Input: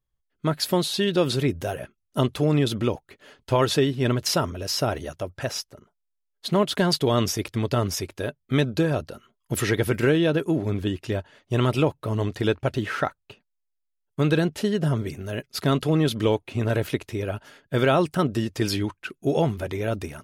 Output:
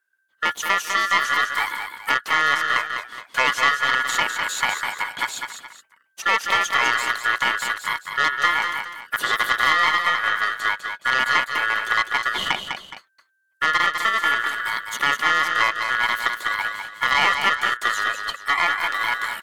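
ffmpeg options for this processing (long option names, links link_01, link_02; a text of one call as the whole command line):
ffmpeg -i in.wav -filter_complex "[0:a]acrossover=split=4100[link_01][link_02];[link_02]acompressor=threshold=-42dB:ratio=4:attack=1:release=60[link_03];[link_01][link_03]amix=inputs=2:normalize=0,equalizer=frequency=3600:width_type=o:width=0.34:gain=-13.5,asplit=2[link_04][link_05];[link_05]acompressor=threshold=-30dB:ratio=6,volume=0.5dB[link_06];[link_04][link_06]amix=inputs=2:normalize=0,aeval=exprs='val(0)*sin(2*PI*1500*n/s)':channel_layout=same,aeval=exprs='(tanh(5.01*val(0)+0.6)-tanh(0.6))/5.01':channel_layout=same,bass=frequency=250:gain=-14,treble=frequency=4000:gain=4,aecho=1:1:210|437:0.473|0.168,asetrate=45938,aresample=44100,volume=5dB" out.wav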